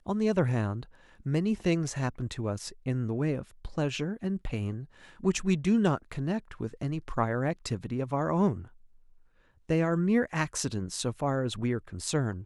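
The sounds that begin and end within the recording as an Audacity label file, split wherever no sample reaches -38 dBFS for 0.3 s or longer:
1.260000	4.840000	sound
5.230000	8.620000	sound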